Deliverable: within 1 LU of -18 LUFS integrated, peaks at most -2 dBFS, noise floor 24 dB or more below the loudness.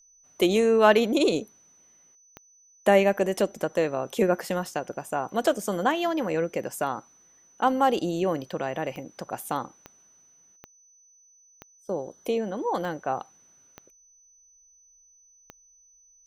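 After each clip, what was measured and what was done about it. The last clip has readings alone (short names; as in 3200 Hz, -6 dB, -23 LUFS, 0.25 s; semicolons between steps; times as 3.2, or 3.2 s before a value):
clicks 8; steady tone 6000 Hz; tone level -56 dBFS; loudness -26.0 LUFS; peak -5.0 dBFS; loudness target -18.0 LUFS
-> de-click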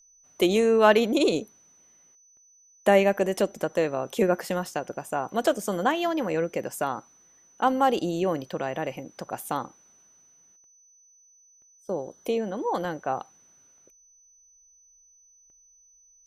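clicks 0; steady tone 6000 Hz; tone level -56 dBFS
-> notch 6000 Hz, Q 30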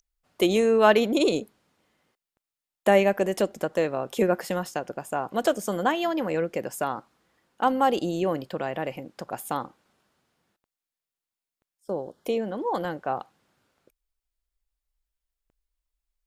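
steady tone none; loudness -26.0 LUFS; peak -5.0 dBFS; loudness target -18.0 LUFS
-> gain +8 dB; limiter -2 dBFS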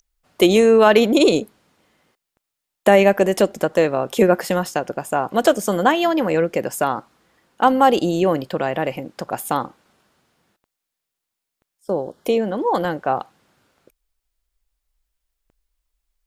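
loudness -18.5 LUFS; peak -2.0 dBFS; noise floor -82 dBFS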